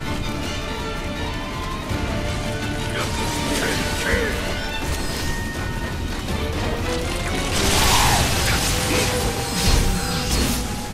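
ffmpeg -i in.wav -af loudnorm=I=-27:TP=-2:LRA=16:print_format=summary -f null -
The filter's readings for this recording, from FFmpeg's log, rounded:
Input Integrated:    -21.5 LUFS
Input True Peak:      -4.5 dBTP
Input LRA:             5.3 LU
Input Threshold:     -31.5 LUFS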